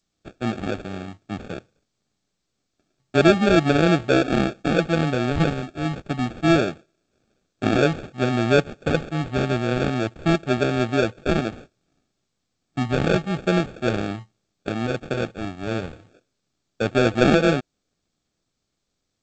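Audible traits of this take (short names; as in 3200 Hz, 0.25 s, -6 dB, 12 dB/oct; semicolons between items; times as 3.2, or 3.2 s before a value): phasing stages 4, 0.3 Hz, lowest notch 590–1700 Hz; aliases and images of a low sample rate 1000 Hz, jitter 0%; G.722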